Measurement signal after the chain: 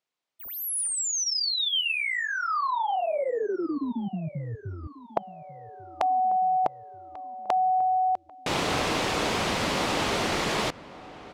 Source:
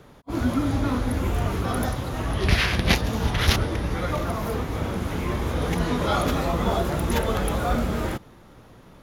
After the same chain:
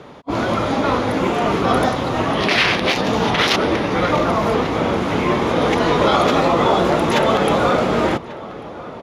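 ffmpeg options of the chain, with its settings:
-filter_complex "[0:a]afftfilt=real='re*lt(hypot(re,im),0.447)':imag='im*lt(hypot(re,im),0.447)':win_size=1024:overlap=0.75,highpass=f=310:p=1,equalizer=f=1600:w=2.5:g=-4,adynamicsmooth=sensitivity=0.5:basefreq=4800,asplit=2[s0][s1];[s1]adelay=1142,lowpass=f=2000:p=1,volume=0.133,asplit=2[s2][s3];[s3]adelay=1142,lowpass=f=2000:p=1,volume=0.49,asplit=2[s4][s5];[s5]adelay=1142,lowpass=f=2000:p=1,volume=0.49,asplit=2[s6][s7];[s7]adelay=1142,lowpass=f=2000:p=1,volume=0.49[s8];[s0][s2][s4][s6][s8]amix=inputs=5:normalize=0,alimiter=level_in=8.41:limit=0.891:release=50:level=0:latency=1,volume=0.596"

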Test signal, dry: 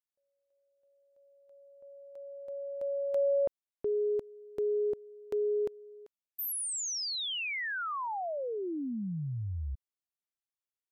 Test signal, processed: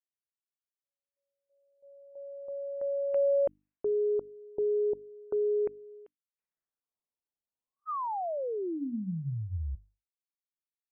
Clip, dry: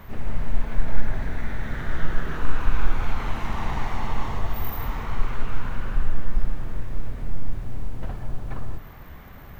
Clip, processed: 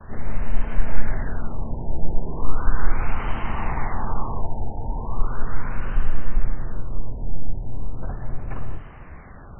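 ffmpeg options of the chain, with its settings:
-af "bandreject=f=50:t=h:w=6,bandreject=f=100:t=h:w=6,bandreject=f=150:t=h:w=6,bandreject=f=200:t=h:w=6,bandreject=f=250:t=h:w=6,bandreject=f=300:t=h:w=6,agate=range=0.00141:threshold=0.00447:ratio=3:release=457:detection=peak,afftfilt=real='re*lt(b*sr/1024,930*pow(3200/930,0.5+0.5*sin(2*PI*0.37*pts/sr)))':imag='im*lt(b*sr/1024,930*pow(3200/930,0.5+0.5*sin(2*PI*0.37*pts/sr)))':win_size=1024:overlap=0.75,volume=1.26"

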